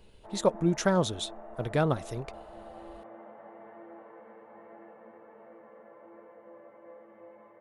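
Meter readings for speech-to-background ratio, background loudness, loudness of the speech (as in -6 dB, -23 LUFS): 19.5 dB, -49.0 LUFS, -29.5 LUFS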